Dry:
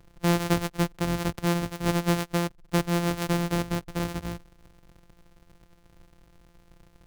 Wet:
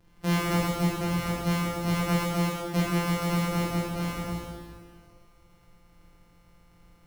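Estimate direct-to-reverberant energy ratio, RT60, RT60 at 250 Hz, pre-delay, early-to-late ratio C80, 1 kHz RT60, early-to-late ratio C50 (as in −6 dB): −7.5 dB, 1.9 s, 1.9 s, 6 ms, 0.0 dB, 1.9 s, −2.0 dB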